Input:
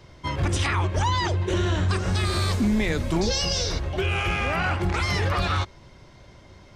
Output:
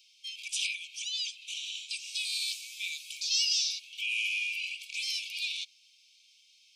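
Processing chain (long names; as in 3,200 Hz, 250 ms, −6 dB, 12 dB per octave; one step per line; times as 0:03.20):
Chebyshev high-pass filter 2,300 Hz, order 10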